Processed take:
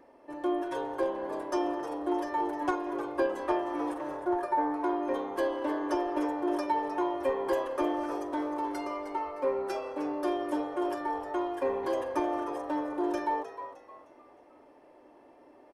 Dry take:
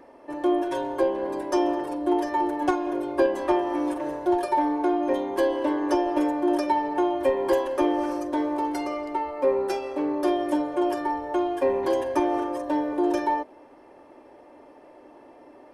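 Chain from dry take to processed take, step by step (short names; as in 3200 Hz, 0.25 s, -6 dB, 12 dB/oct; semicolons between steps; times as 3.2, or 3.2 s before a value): 4.17–4.74 resonant high shelf 2300 Hz -7.5 dB, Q 1.5; frequency-shifting echo 0.308 s, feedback 37%, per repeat +98 Hz, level -12 dB; dynamic EQ 1300 Hz, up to +5 dB, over -42 dBFS, Q 1.7; gain -7.5 dB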